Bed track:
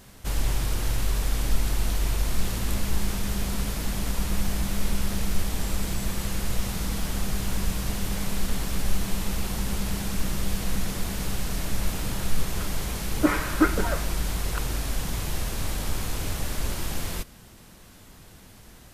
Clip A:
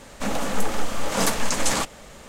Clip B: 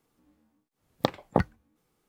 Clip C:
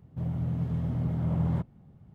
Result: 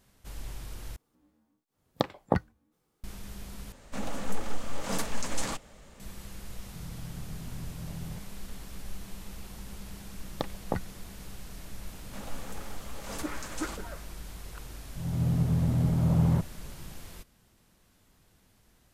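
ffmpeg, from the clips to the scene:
ffmpeg -i bed.wav -i cue0.wav -i cue1.wav -i cue2.wav -filter_complex "[2:a]asplit=2[link_01][link_02];[1:a]asplit=2[link_03][link_04];[3:a]asplit=2[link_05][link_06];[0:a]volume=-15dB[link_07];[link_01]equalizer=frequency=2400:width_type=o:width=0.77:gain=-2.5[link_08];[link_03]lowshelf=frequency=200:gain=7[link_09];[link_06]dynaudnorm=framelen=210:gausssize=3:maxgain=14dB[link_10];[link_07]asplit=3[link_11][link_12][link_13];[link_11]atrim=end=0.964[link_14];[link_08]atrim=end=2.08,asetpts=PTS-STARTPTS,volume=-2dB[link_15];[link_12]atrim=start=3.036:end=3.724[link_16];[link_09]atrim=end=2.28,asetpts=PTS-STARTPTS,volume=-11.5dB[link_17];[link_13]atrim=start=5.996[link_18];[link_05]atrim=end=2.14,asetpts=PTS-STARTPTS,volume=-13.5dB,afade=type=in:duration=0.004:curve=hsin,afade=type=out:start_time=2.136:duration=0.004:curve=hsin,adelay=6570[link_19];[link_02]atrim=end=2.08,asetpts=PTS-STARTPTS,volume=-8dB,afade=type=in:duration=0.004:curve=hsin,afade=type=out:start_time=2.076:duration=0.004:curve=hsin,adelay=9360[link_20];[link_04]atrim=end=2.28,asetpts=PTS-STARTPTS,volume=-17.5dB,afade=type=in:duration=0.004:curve=hsin,afade=type=out:start_time=2.276:duration=0.004:curve=hsin,adelay=11920[link_21];[link_10]atrim=end=2.14,asetpts=PTS-STARTPTS,volume=-10dB,afade=type=in:duration=0.004:curve=hsin,afade=type=out:start_time=2.136:duration=0.004:curve=hsin,adelay=14790[link_22];[link_14][link_15]acrossfade=duration=0.004:curve1=hsin:curve2=hsin[link_23];[link_23][link_16]acrossfade=duration=0.004:curve1=hsin:curve2=hsin[link_24];[link_24][link_17]acrossfade=duration=0.004:curve1=hsin:curve2=hsin[link_25];[link_25][link_18]acrossfade=duration=0.004:curve1=hsin:curve2=hsin[link_26];[link_26][link_19][link_20][link_21][link_22]amix=inputs=5:normalize=0" out.wav

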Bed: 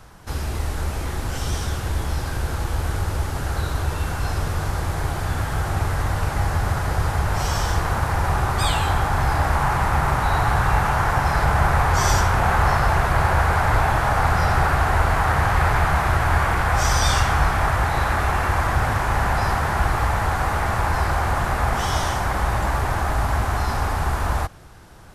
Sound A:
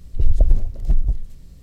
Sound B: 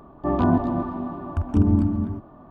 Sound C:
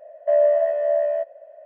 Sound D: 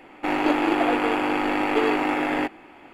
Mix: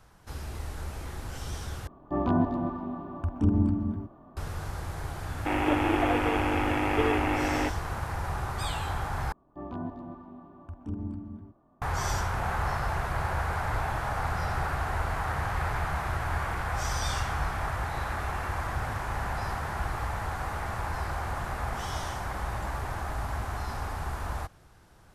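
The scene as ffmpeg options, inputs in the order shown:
ffmpeg -i bed.wav -i cue0.wav -i cue1.wav -i cue2.wav -i cue3.wav -filter_complex "[2:a]asplit=2[link_01][link_02];[0:a]volume=-11.5dB[link_03];[4:a]aresample=8000,aresample=44100[link_04];[link_03]asplit=3[link_05][link_06][link_07];[link_05]atrim=end=1.874[link_08];[link_01]atrim=end=2.5,asetpts=PTS-STARTPTS,volume=-5.5dB[link_09];[link_06]atrim=start=4.366:end=9.324[link_10];[link_02]atrim=end=2.5,asetpts=PTS-STARTPTS,volume=-17dB[link_11];[link_07]atrim=start=11.816[link_12];[link_04]atrim=end=2.93,asetpts=PTS-STARTPTS,volume=-4.5dB,afade=type=in:duration=0.004:curve=hsin,afade=type=out:start_time=2.926:duration=0.004:curve=hsin,adelay=5220[link_13];[link_08][link_09]acrossfade=duration=0.004:curve1=hsin:curve2=hsin[link_14];[link_14][link_10]acrossfade=duration=0.004:curve1=hsin:curve2=hsin[link_15];[link_15][link_11]acrossfade=duration=0.004:curve1=hsin:curve2=hsin[link_16];[link_16][link_12]acrossfade=duration=0.004:curve1=hsin:curve2=hsin[link_17];[link_17][link_13]amix=inputs=2:normalize=0" out.wav

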